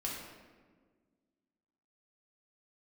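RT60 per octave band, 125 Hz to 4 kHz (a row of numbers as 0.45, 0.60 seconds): 1.9, 2.2, 1.8, 1.3, 1.2, 0.90 seconds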